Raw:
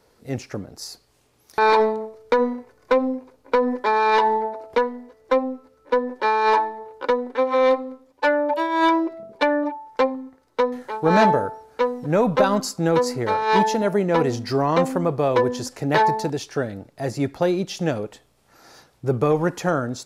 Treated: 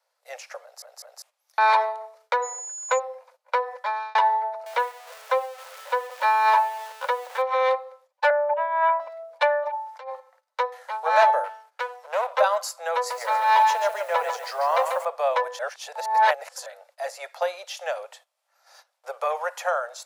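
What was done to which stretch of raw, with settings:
0:00.62: stutter in place 0.20 s, 3 plays
0:02.42–0:02.98: steady tone 6,900 Hz −30 dBFS
0:03.66–0:04.15: fade out
0:04.66–0:07.42: converter with a step at zero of −34 dBFS
0:08.30–0:09.00: Bessel low-pass filter 1,600 Hz, order 6
0:09.73–0:10.20: compressor whose output falls as the input rises −29 dBFS
0:11.44–0:12.33: gain on one half-wave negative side −12 dB
0:12.96–0:15.05: feedback echo at a low word length 141 ms, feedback 35%, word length 7 bits, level −6 dB
0:15.59–0:16.66: reverse
whole clip: noise gate −47 dBFS, range −13 dB; Butterworth high-pass 540 Hz 72 dB per octave; dynamic equaliser 5,200 Hz, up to −5 dB, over −44 dBFS, Q 1.3

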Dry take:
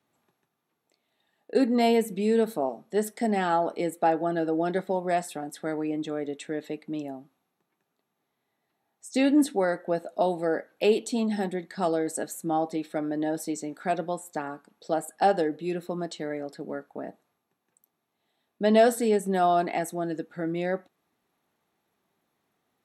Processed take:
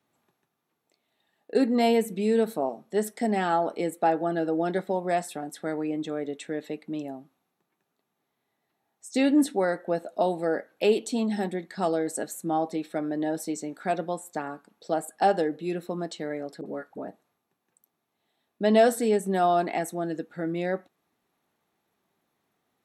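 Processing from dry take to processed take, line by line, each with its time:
0:16.61–0:17.08: all-pass dispersion highs, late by 47 ms, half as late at 780 Hz

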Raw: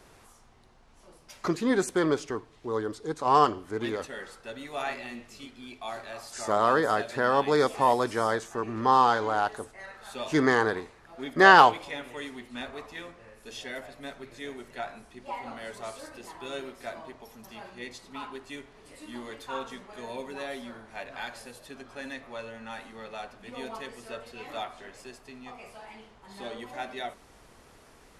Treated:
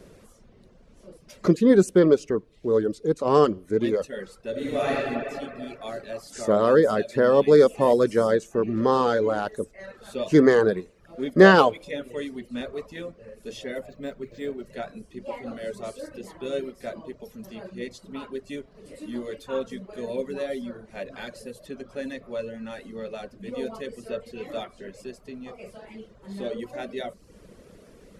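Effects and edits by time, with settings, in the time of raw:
0:04.50–0:04.96: thrown reverb, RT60 2.7 s, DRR −7 dB
0:13.89–0:14.66: linearly interpolated sample-rate reduction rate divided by 4×
whole clip: parametric band 190 Hz +9.5 dB 0.38 octaves; reverb reduction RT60 0.58 s; low shelf with overshoot 660 Hz +6 dB, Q 3

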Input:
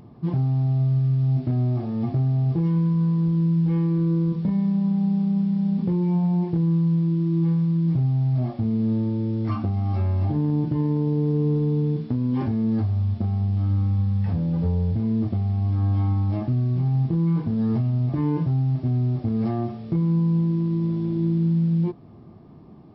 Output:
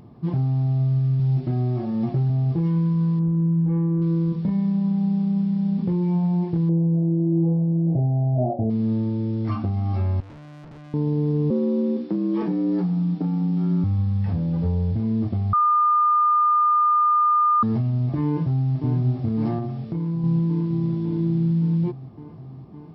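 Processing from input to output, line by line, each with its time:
0:01.19–0:02.30: comb filter 5.4 ms
0:03.19–0:04.02: low-pass filter 1,300 Hz
0:06.69–0:08.70: drawn EQ curve 220 Hz 0 dB, 700 Hz +15 dB, 1,100 Hz −16 dB, 2,400 Hz −25 dB
0:10.20–0:10.94: tube saturation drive 41 dB, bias 0.65
0:11.50–0:13.84: frequency shifter +77 Hz
0:15.53–0:17.63: beep over 1,210 Hz −15 dBFS
0:18.25–0:18.72: delay throw 560 ms, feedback 80%, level −6.5 dB
0:19.58–0:20.24: downward compressor 2 to 1, threshold −26 dBFS

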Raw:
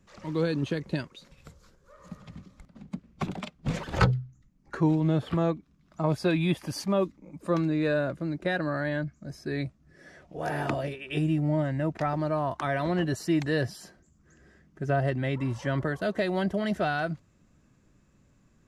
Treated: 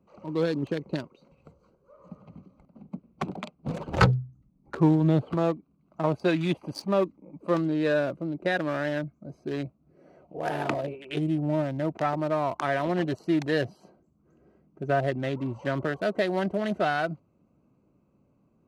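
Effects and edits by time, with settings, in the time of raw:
0:03.80–0:05.22: low-shelf EQ 170 Hz +10 dB
whole clip: adaptive Wiener filter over 25 samples; high-pass filter 300 Hz 6 dB per octave; level +4 dB

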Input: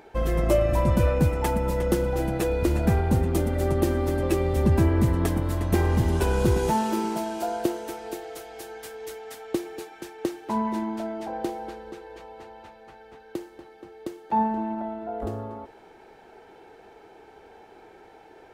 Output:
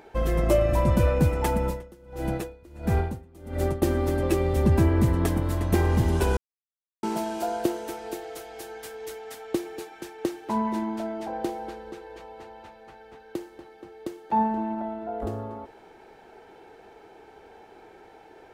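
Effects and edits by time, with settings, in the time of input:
0:01.64–0:03.82: tremolo with a sine in dB 1.5 Hz, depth 28 dB
0:06.37–0:07.03: silence

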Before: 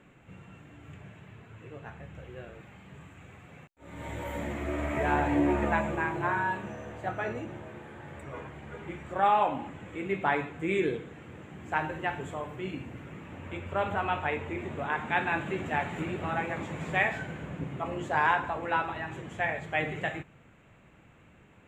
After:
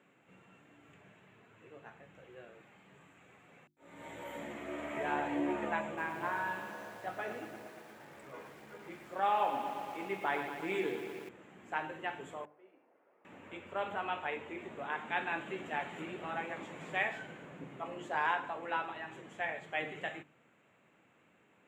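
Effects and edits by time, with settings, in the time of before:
0:05.86–0:11.29: feedback echo at a low word length 117 ms, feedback 80%, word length 8 bits, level −9 dB
0:12.45–0:13.25: four-pole ladder band-pass 730 Hz, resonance 30%
whole clip: high-pass filter 220 Hz 12 dB per octave; mains-hum notches 50/100/150/200/250/300/350 Hz; dynamic equaliser 3,100 Hz, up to +4 dB, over −54 dBFS, Q 3.9; level −7 dB

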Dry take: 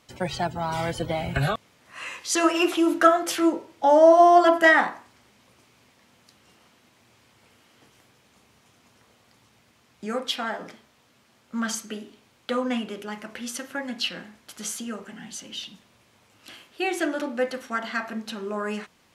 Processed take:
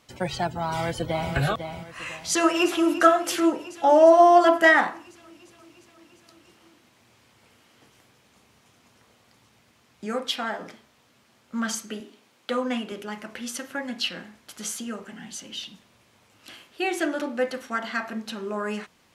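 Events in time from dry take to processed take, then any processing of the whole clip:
0:00.64–0:01.33: delay throw 500 ms, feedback 35%, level −7.5 dB
0:02.30–0:02.99: delay throw 350 ms, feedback 75%, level −14 dB
0:12.00–0:12.92: high-pass filter 190 Hz

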